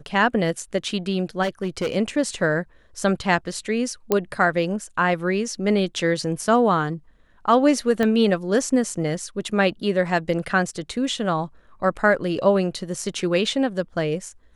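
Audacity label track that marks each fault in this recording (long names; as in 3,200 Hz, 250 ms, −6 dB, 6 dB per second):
1.420000	1.960000	clipping −19.5 dBFS
4.120000	4.120000	click −6 dBFS
8.030000	8.030000	click −10 dBFS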